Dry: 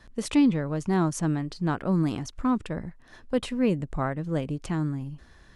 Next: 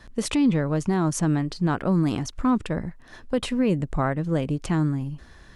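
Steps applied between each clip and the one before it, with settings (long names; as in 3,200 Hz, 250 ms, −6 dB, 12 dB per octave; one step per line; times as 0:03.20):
brickwall limiter −18.5 dBFS, peak gain reduction 7.5 dB
level +5 dB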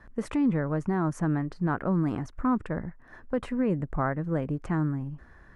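high shelf with overshoot 2,400 Hz −12 dB, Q 1.5
level −4.5 dB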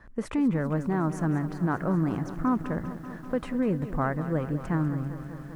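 feedback echo at a low word length 196 ms, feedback 80%, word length 9 bits, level −13 dB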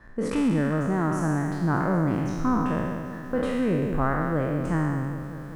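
peak hold with a decay on every bin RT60 1.79 s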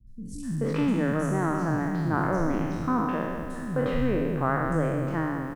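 three-band delay without the direct sound lows, highs, mids 70/430 ms, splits 190/5,400 Hz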